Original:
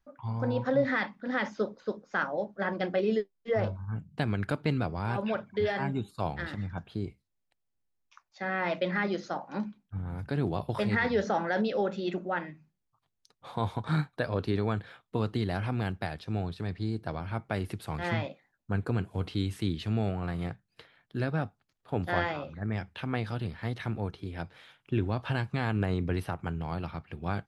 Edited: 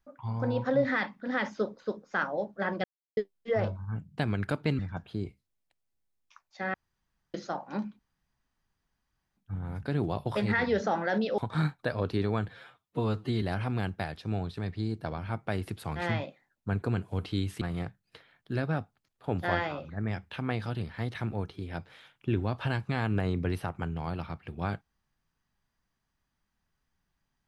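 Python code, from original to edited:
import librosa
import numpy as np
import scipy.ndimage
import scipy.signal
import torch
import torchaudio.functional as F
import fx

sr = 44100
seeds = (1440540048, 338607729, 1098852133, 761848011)

y = fx.edit(x, sr, fx.silence(start_s=2.84, length_s=0.33),
    fx.cut(start_s=4.79, length_s=1.81),
    fx.room_tone_fill(start_s=8.55, length_s=0.6),
    fx.insert_room_tone(at_s=9.8, length_s=1.38),
    fx.cut(start_s=11.81, length_s=1.91),
    fx.stretch_span(start_s=14.82, length_s=0.63, factor=1.5),
    fx.cut(start_s=19.64, length_s=0.62), tone=tone)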